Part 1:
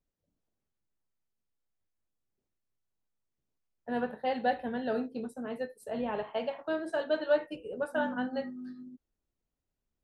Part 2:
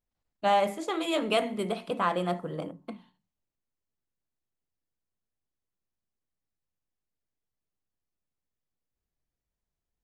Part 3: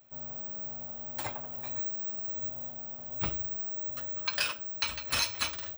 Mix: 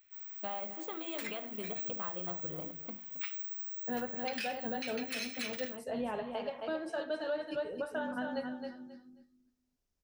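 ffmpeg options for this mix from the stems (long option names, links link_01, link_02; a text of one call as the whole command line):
ffmpeg -i stem1.wav -i stem2.wav -i stem3.wav -filter_complex "[0:a]equalizer=frequency=5500:width_type=o:width=0.65:gain=8,volume=-2dB,asplit=2[link_01][link_02];[link_02]volume=-7dB[link_03];[1:a]acompressor=threshold=-34dB:ratio=4,volume=-6dB,asplit=2[link_04][link_05];[link_05]volume=-14dB[link_06];[2:a]highpass=frequency=2000:width_type=q:width=2.7,volume=-5dB[link_07];[link_03][link_06]amix=inputs=2:normalize=0,aecho=0:1:268|536|804:1|0.21|0.0441[link_08];[link_01][link_04][link_07][link_08]amix=inputs=4:normalize=0,alimiter=level_in=3dB:limit=-24dB:level=0:latency=1:release=158,volume=-3dB" out.wav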